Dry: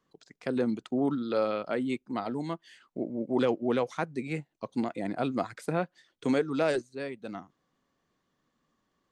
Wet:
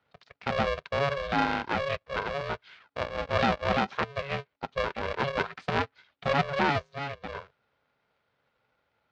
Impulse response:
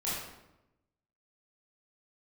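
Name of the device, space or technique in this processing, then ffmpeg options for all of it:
ring modulator pedal into a guitar cabinet: -af "aeval=exprs='val(0)*sgn(sin(2*PI*280*n/s))':c=same,highpass=80,equalizer=f=310:t=q:w=4:g=-5,equalizer=f=1400:t=q:w=4:g=4,equalizer=f=2300:t=q:w=4:g=3,lowpass=f=4400:w=0.5412,lowpass=f=4400:w=1.3066,volume=1.19"

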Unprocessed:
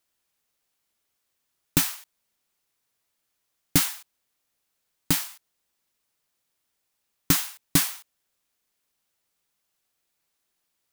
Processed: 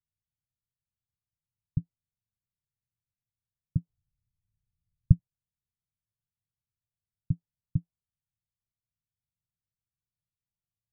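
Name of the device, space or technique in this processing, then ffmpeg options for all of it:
the neighbour's flat through the wall: -filter_complex "[0:a]asettb=1/sr,asplit=3[s0][s1][s2];[s0]atrim=end=3.894[s3];[s1]atrim=start=3.89:end=5.19,asetpts=PTS-STARTPTS,afade=t=in:d=0.004:c=qsin,afade=t=out:st=1.296:d=0.004:c=qsin,aemphasis=mode=reproduction:type=riaa[s4];[s2]atrim=start=5.186[s5];[s3][s4]acrossfade=d=0.004:c1=hsin:c2=qsin[s6];[s6][s5]acrossfade=d=0.004:c1=qsin:c2=hsin,lowpass=f=160:w=0.5412,lowpass=f=160:w=1.3066,equalizer=f=110:t=o:w=0.92:g=8,volume=0.708"

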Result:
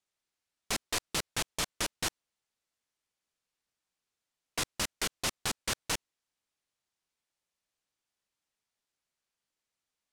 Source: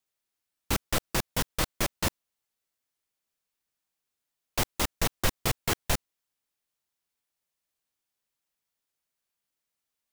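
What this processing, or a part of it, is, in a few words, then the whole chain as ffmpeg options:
overflowing digital effects unit: -af "aeval=exprs='(mod(12.6*val(0)+1,2)-1)/12.6':c=same,lowpass=8600"

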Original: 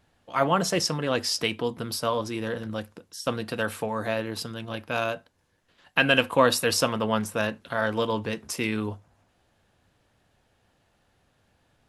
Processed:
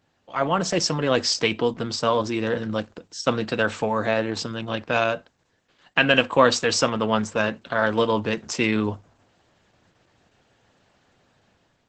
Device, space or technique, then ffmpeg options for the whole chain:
video call: -af "highpass=100,dynaudnorm=f=520:g=3:m=2.24" -ar 48000 -c:a libopus -b:a 12k

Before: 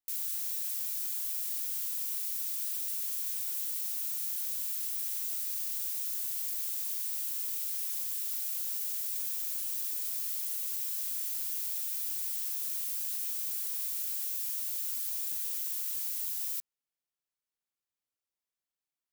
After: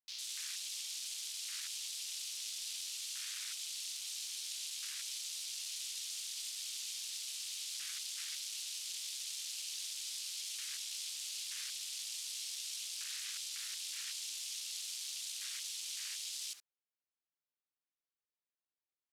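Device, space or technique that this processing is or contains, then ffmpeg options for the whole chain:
over-cleaned archive recording: -af "highpass=200,lowpass=5100,afwtdn=0.00178,volume=3.16"

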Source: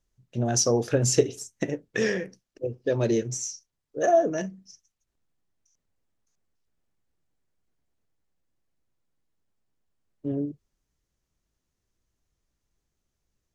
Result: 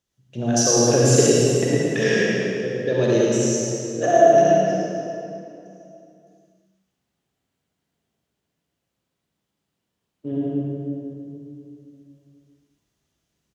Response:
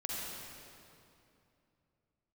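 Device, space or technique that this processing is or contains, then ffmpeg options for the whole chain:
PA in a hall: -filter_complex "[0:a]highpass=100,equalizer=f=3200:t=o:w=0.63:g=5,aecho=1:1:109:0.562[s0];[1:a]atrim=start_sample=2205[s1];[s0][s1]afir=irnorm=-1:irlink=0,volume=1.5"

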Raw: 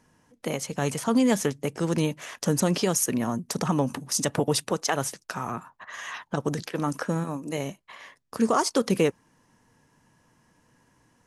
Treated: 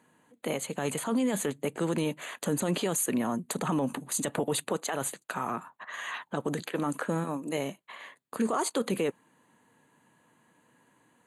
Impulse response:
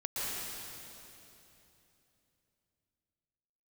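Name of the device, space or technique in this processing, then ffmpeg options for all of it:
PA system with an anti-feedback notch: -af "highpass=190,asuperstop=centerf=5400:order=4:qfactor=2.4,alimiter=limit=0.106:level=0:latency=1:release=12"

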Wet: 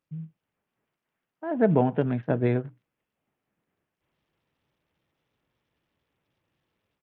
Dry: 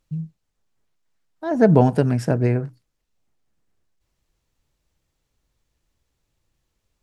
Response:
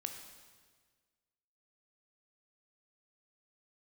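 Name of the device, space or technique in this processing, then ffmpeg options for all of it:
Bluetooth headset: -filter_complex "[0:a]asplit=3[s0][s1][s2];[s0]afade=t=out:st=2.2:d=0.02[s3];[s1]agate=range=0.251:threshold=0.0891:ratio=16:detection=peak,afade=t=in:st=2.2:d=0.02,afade=t=out:st=2.64:d=0.02[s4];[s2]afade=t=in:st=2.64:d=0.02[s5];[s3][s4][s5]amix=inputs=3:normalize=0,highpass=140,dynaudnorm=f=210:g=3:m=2.99,aresample=8000,aresample=44100,volume=0.398" -ar 48000 -c:a sbc -b:a 64k

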